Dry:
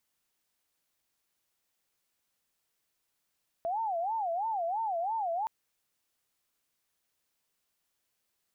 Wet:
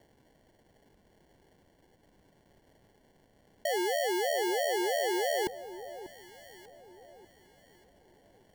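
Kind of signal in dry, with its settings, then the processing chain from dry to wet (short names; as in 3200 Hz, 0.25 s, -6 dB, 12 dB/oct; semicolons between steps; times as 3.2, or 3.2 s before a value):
siren wail 665–908 Hz 3/s sine -29 dBFS 1.82 s
in parallel at +1.5 dB: negative-ratio compressor -40 dBFS, ratio -0.5; on the sum: sample-and-hold 35×; echo with dull and thin repeats by turns 0.592 s, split 1100 Hz, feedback 53%, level -13 dB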